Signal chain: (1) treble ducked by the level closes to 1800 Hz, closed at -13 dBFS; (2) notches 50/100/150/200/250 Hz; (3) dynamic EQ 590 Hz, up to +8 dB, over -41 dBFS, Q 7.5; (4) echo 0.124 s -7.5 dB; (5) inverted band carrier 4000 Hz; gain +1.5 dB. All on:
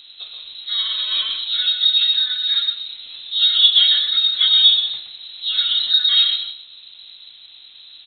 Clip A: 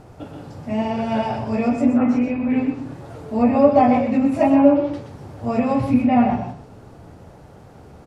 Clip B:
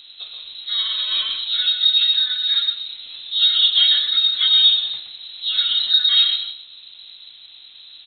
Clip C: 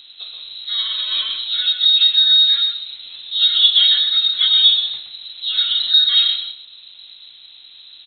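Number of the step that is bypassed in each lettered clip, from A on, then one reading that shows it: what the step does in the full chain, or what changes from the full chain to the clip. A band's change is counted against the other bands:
5, loudness change -4.0 LU; 3, crest factor change -2.0 dB; 2, loudness change +1.5 LU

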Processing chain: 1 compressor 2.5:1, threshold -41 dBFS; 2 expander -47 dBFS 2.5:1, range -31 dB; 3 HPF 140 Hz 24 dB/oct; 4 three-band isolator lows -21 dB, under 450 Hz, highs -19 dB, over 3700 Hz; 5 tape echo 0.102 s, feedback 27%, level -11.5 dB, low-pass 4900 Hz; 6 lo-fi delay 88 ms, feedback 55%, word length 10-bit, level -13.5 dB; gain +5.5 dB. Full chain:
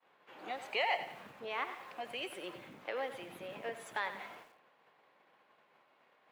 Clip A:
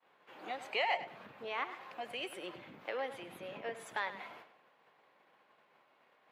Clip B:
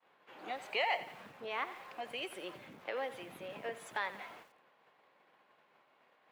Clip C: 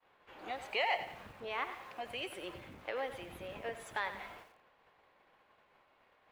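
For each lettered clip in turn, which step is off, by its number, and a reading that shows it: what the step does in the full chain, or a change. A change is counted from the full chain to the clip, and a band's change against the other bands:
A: 6, momentary loudness spread change +1 LU; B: 5, momentary loudness spread change +2 LU; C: 3, 125 Hz band +5.0 dB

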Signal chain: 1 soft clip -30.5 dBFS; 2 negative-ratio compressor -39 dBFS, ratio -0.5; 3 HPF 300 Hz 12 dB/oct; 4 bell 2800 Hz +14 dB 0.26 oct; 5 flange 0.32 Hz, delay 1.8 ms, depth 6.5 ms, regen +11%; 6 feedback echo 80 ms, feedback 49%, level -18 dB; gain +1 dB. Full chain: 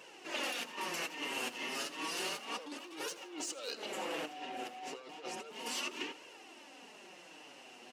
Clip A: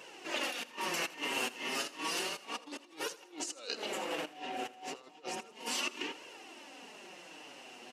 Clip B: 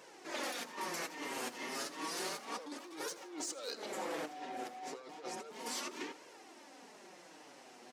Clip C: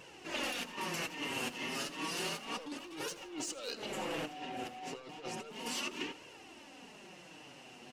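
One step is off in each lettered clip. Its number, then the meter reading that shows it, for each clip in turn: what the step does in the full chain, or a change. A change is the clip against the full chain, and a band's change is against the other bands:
1, distortion -7 dB; 4, 4 kHz band -4.5 dB; 3, 125 Hz band +11.0 dB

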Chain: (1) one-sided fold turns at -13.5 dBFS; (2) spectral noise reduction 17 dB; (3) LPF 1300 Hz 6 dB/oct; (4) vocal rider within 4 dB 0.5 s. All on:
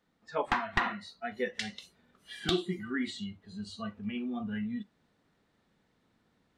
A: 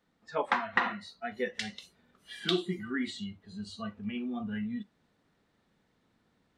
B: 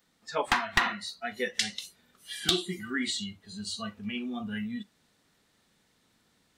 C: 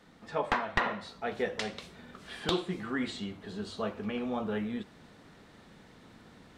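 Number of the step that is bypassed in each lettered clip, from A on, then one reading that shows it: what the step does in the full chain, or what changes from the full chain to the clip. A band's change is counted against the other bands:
1, distortion -8 dB; 3, 8 kHz band +12.5 dB; 2, 500 Hz band +3.0 dB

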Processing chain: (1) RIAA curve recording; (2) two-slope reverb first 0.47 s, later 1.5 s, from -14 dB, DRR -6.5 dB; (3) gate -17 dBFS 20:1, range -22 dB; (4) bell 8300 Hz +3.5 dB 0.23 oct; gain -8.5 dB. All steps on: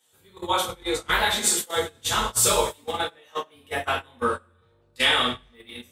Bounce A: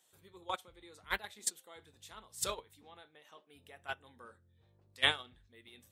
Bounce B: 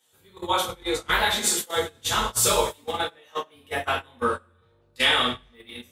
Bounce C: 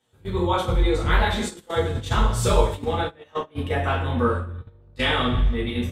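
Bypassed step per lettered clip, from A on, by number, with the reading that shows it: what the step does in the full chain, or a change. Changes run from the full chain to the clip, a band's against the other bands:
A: 2, momentary loudness spread change +10 LU; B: 4, 8 kHz band -1.5 dB; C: 1, 125 Hz band +17.0 dB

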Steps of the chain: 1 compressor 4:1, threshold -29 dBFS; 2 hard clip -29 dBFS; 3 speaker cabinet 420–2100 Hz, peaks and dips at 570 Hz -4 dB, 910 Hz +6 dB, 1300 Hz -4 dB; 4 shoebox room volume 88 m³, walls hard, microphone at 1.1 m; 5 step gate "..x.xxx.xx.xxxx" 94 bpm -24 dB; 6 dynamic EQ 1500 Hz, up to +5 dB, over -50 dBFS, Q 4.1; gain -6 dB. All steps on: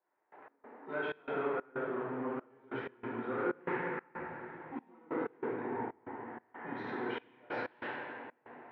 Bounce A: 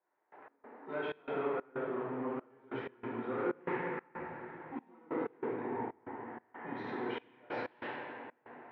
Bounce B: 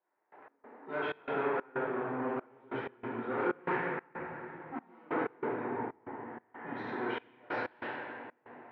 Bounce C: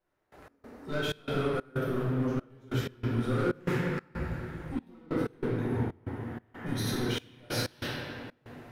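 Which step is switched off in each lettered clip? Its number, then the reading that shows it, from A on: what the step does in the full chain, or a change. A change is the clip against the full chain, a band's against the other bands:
6, 2 kHz band -3.0 dB; 1, loudness change +2.0 LU; 3, 125 Hz band +16.5 dB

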